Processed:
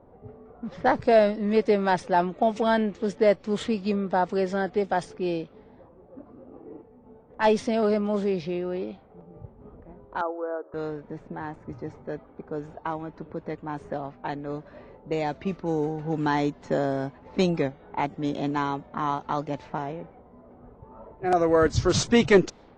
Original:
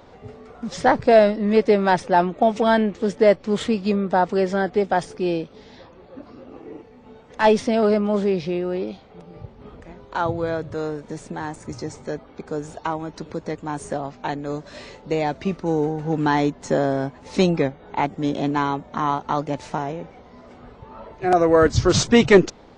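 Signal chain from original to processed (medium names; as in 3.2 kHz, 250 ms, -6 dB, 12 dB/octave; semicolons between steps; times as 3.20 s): level-controlled noise filter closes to 740 Hz, open at -17 dBFS; 10.21–10.74 s: elliptic band-pass 350–1400 Hz, stop band 40 dB; trim -5 dB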